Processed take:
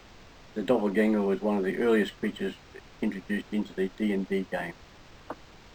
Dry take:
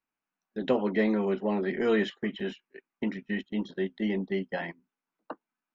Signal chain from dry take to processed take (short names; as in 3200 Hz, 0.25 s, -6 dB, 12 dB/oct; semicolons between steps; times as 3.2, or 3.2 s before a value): added noise pink -52 dBFS; decimation joined by straight lines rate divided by 4×; gain +1.5 dB